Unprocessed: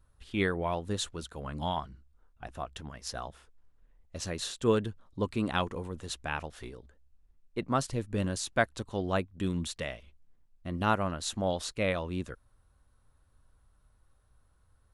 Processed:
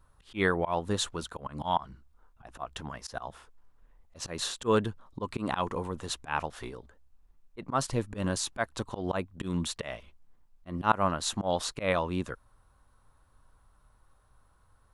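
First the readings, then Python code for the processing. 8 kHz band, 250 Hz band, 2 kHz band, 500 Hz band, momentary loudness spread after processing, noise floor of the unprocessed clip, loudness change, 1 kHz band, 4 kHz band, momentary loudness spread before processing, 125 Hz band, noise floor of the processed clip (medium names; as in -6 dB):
+2.5 dB, -0.5 dB, +0.5 dB, +0.5 dB, 15 LU, -67 dBFS, +1.0 dB, +3.5 dB, +2.0 dB, 15 LU, -1.0 dB, -65 dBFS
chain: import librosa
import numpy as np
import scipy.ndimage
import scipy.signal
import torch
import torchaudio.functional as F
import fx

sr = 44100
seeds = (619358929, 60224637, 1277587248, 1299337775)

y = fx.peak_eq(x, sr, hz=1000.0, db=7.0, octaves=1.0)
y = fx.auto_swell(y, sr, attack_ms=126.0)
y = fx.peak_eq(y, sr, hz=71.0, db=-4.5, octaves=0.77)
y = y * librosa.db_to_amplitude(3.0)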